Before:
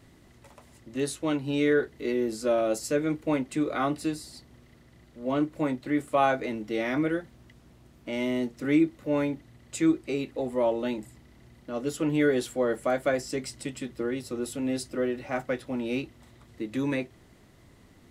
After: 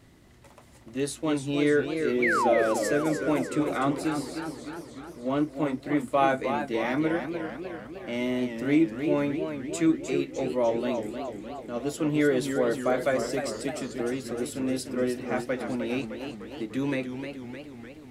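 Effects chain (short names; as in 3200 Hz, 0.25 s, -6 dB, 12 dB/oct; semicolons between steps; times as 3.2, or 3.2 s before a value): painted sound fall, 2.22–2.63, 400–2400 Hz -25 dBFS; warbling echo 0.302 s, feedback 63%, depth 161 cents, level -7.5 dB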